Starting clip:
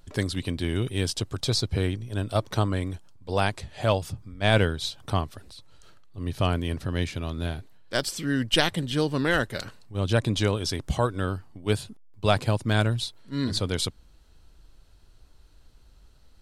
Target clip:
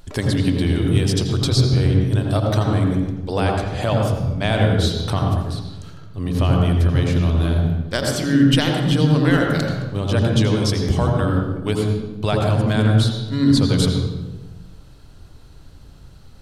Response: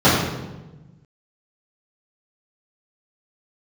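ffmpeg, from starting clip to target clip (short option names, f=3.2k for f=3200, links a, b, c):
-filter_complex "[0:a]acompressor=threshold=-31dB:ratio=2.5,asplit=2[a][b];[1:a]atrim=start_sample=2205,adelay=78[c];[b][c]afir=irnorm=-1:irlink=0,volume=-26.5dB[d];[a][d]amix=inputs=2:normalize=0,volume=9dB"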